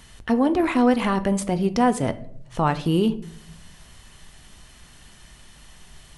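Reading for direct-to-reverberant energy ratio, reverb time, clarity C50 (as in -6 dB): 11.0 dB, 0.65 s, 16.5 dB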